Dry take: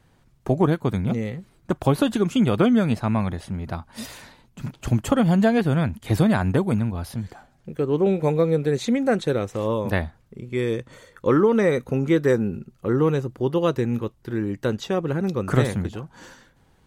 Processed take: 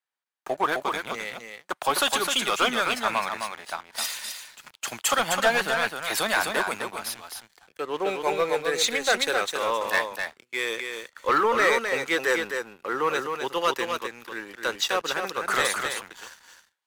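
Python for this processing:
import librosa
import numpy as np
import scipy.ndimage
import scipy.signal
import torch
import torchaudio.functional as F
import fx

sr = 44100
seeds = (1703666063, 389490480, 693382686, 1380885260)

y = scipy.signal.sosfilt(scipy.signal.butter(2, 1100.0, 'highpass', fs=sr, output='sos'), x)
y = fx.leveller(y, sr, passes=3)
y = y + 10.0 ** (-4.5 / 20.0) * np.pad(y, (int(259 * sr / 1000.0), 0))[:len(y)]
y = fx.band_widen(y, sr, depth_pct=40)
y = F.gain(torch.from_numpy(y), -1.5).numpy()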